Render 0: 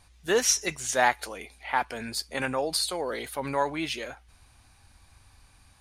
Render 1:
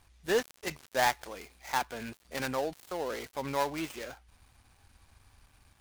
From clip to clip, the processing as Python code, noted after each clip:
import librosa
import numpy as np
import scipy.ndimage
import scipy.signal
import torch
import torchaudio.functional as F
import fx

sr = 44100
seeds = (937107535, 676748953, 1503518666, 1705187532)

y = fx.dead_time(x, sr, dead_ms=0.14)
y = y * 10.0 ** (-3.5 / 20.0)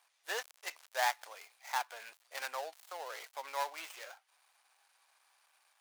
y = scipy.signal.sosfilt(scipy.signal.butter(4, 640.0, 'highpass', fs=sr, output='sos'), x)
y = y * 10.0 ** (-4.0 / 20.0)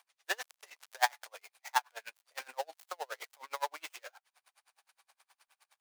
y = x * 10.0 ** (-36 * (0.5 - 0.5 * np.cos(2.0 * np.pi * 9.6 * np.arange(len(x)) / sr)) / 20.0)
y = y * 10.0 ** (8.0 / 20.0)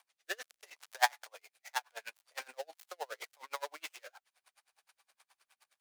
y = fx.rotary_switch(x, sr, hz=0.8, then_hz=6.7, switch_at_s=2.4)
y = y * 10.0 ** (1.5 / 20.0)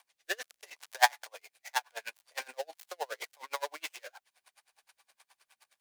y = fx.notch(x, sr, hz=1300.0, q=10.0)
y = y * 10.0 ** (4.5 / 20.0)